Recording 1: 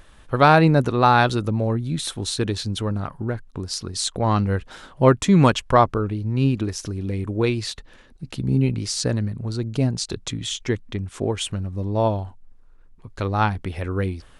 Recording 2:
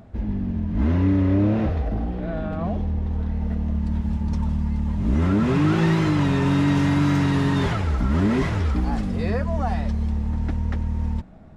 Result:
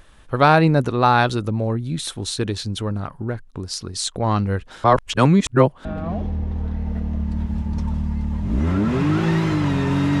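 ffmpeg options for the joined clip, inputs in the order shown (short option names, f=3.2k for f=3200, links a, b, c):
-filter_complex "[0:a]apad=whole_dur=10.2,atrim=end=10.2,asplit=2[a][b];[a]atrim=end=4.842[c];[b]atrim=start=4.838:end=5.852,asetpts=PTS-STARTPTS,areverse[d];[1:a]atrim=start=2.398:end=6.75[e];[c][d]acrossfade=d=0.004:c1=hsin:c2=hsin[f];[f][e]acrossfade=d=0.004:c1=hsin:c2=hsin"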